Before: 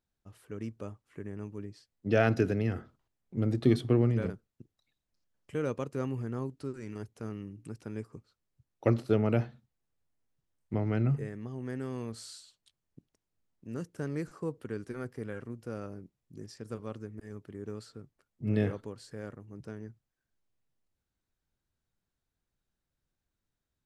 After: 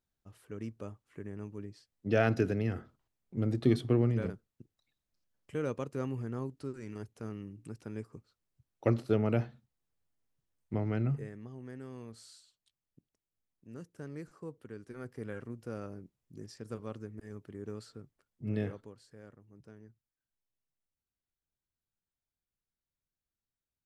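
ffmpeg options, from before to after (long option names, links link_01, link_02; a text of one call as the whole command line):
ffmpeg -i in.wav -af "volume=5dB,afade=type=out:start_time=10.8:duration=0.92:silence=0.473151,afade=type=in:start_time=14.84:duration=0.46:silence=0.446684,afade=type=out:start_time=18:duration=1.07:silence=0.334965" out.wav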